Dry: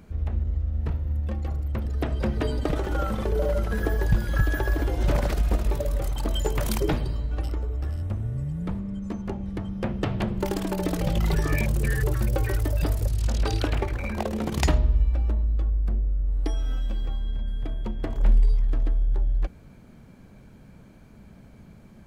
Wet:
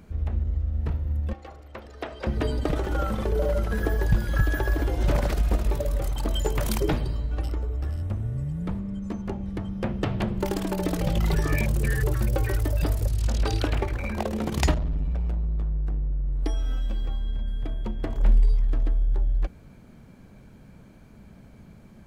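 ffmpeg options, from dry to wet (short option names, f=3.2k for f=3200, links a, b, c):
-filter_complex "[0:a]asettb=1/sr,asplit=3[a][b][c];[a]atrim=end=1.334[d];[b]atrim=start=1.33:end=2.27,asetpts=PTS-STARTPTS,afade=t=in:d=0.004:c=qsin,afade=t=out:st=0.936:d=0.004:c=qsin,acrossover=split=380 7400:gain=0.112 1 0.251[e][f][g];[e][f][g]amix=inputs=3:normalize=0[h];[c]atrim=start=2.266[i];[d][h]acrossfade=d=0.004:c1=hsin:c2=qsin[j];[j][i]acrossfade=d=0.004:c1=qsin:c2=hsin,asettb=1/sr,asplit=3[k][l][m];[k]atrim=end=14.744[n];[l]atrim=start=14.74:end=16.43,asetpts=PTS-STARTPTS,afade=t=in:d=0.004:c=qsin,afade=t=out:st=1.686:d=0.004:c=qsin,asoftclip=type=hard:threshold=-23.5dB[o];[m]atrim=start=16.426[p];[n][o]acrossfade=d=0.004:c1=hsin:c2=qsin[q];[q][p]acrossfade=d=0.004:c1=qsin:c2=hsin"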